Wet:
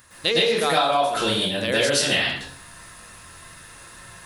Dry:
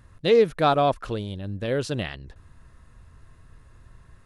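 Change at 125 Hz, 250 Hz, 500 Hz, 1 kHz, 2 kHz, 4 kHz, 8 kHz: -3.5 dB, +0.5 dB, -0.5 dB, +2.5 dB, +11.0 dB, +14.0 dB, +18.5 dB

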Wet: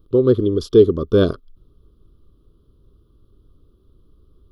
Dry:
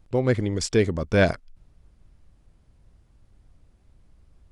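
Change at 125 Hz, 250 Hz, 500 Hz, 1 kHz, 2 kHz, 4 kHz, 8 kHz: +2.5 dB, +7.0 dB, +9.0 dB, -3.0 dB, -9.5 dB, +1.0 dB, under -10 dB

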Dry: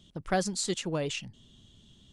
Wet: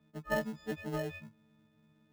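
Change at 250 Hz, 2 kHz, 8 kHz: -5.5 dB, -2.0 dB, -21.0 dB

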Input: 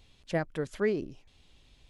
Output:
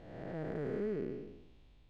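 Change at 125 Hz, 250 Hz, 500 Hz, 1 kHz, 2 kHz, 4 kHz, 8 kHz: -5.0 dB, -5.5 dB, -6.5 dB, -9.5 dB, -13.0 dB, under -10 dB, no reading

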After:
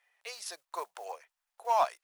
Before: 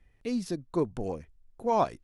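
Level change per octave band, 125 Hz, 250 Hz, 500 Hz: under -35 dB, -31.5 dB, -6.5 dB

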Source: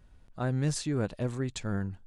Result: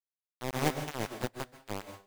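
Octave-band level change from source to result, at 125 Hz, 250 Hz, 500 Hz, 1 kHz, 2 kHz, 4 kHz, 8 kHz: -9.5 dB, -6.5 dB, -2.0 dB, +5.0 dB, +2.0 dB, +0.5 dB, -4.0 dB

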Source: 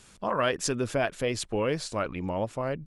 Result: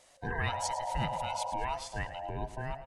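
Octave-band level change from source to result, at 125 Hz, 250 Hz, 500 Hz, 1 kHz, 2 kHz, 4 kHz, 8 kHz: -3.5 dB, -12.0 dB, -12.0 dB, 0.0 dB, -4.5 dB, -6.0 dB, -7.0 dB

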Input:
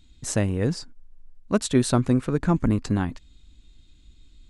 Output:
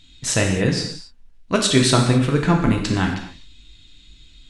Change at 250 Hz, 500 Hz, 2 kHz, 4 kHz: +3.5 dB, +5.0 dB, +11.5 dB, +14.0 dB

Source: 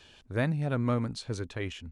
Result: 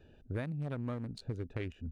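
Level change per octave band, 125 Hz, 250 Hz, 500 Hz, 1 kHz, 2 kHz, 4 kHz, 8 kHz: -6.5 dB, -8.0 dB, -8.5 dB, -11.5 dB, -10.5 dB, -12.0 dB, under -15 dB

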